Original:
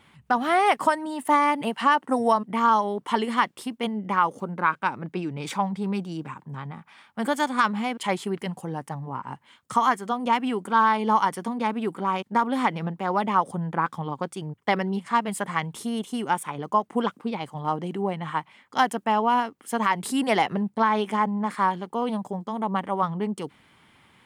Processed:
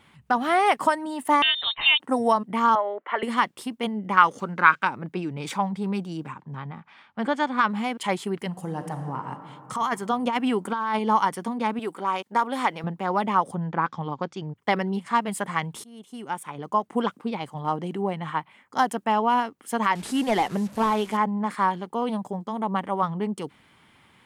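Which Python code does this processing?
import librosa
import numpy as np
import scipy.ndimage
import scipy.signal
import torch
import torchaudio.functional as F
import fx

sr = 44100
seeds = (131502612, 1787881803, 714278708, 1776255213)

y = fx.freq_invert(x, sr, carrier_hz=3900, at=(1.42, 2.0))
y = fx.cabinet(y, sr, low_hz=390.0, low_slope=24, high_hz=2500.0, hz=(420.0, 610.0, 920.0, 1400.0, 2000.0), db=(-3, 6, -6, 4, 7), at=(2.75, 3.23))
y = fx.band_shelf(y, sr, hz=3000.0, db=9.0, octaves=2.9, at=(4.17, 4.85))
y = fx.lowpass(y, sr, hz=fx.line((6.32, 5600.0), (7.68, 3400.0)), slope=12, at=(6.32, 7.68), fade=0.02)
y = fx.reverb_throw(y, sr, start_s=8.47, length_s=0.77, rt60_s=2.9, drr_db=5.0)
y = fx.over_compress(y, sr, threshold_db=-24.0, ratio=-1.0, at=(9.75, 10.99))
y = fx.bass_treble(y, sr, bass_db=-12, treble_db=3, at=(11.79, 12.84))
y = fx.steep_lowpass(y, sr, hz=6400.0, slope=36, at=(13.54, 14.56))
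y = fx.peak_eq(y, sr, hz=fx.line((18.3, 10000.0), (18.88, 2100.0)), db=-9.5, octaves=0.77, at=(18.3, 18.88), fade=0.02)
y = fx.delta_mod(y, sr, bps=64000, step_db=-38.5, at=(19.95, 21.17))
y = fx.edit(y, sr, fx.fade_in_from(start_s=15.84, length_s=1.08, floor_db=-24.0), tone=tone)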